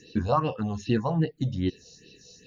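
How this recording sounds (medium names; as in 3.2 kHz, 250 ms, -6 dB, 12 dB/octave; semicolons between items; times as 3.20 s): phasing stages 4, 2.5 Hz, lowest notch 290–1300 Hz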